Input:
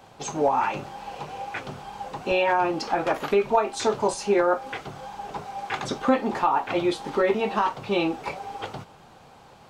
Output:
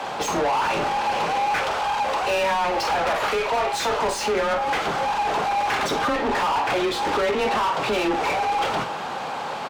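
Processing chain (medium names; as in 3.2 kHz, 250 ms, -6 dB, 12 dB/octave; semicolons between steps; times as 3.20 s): 1.58–4.01 s: high-pass 450 Hz 24 dB/octave; compression 5:1, threshold -27 dBFS, peak gain reduction 11.5 dB; overdrive pedal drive 32 dB, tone 2.6 kHz, clips at -15.5 dBFS; frequency shift +17 Hz; doubling 47 ms -12 dB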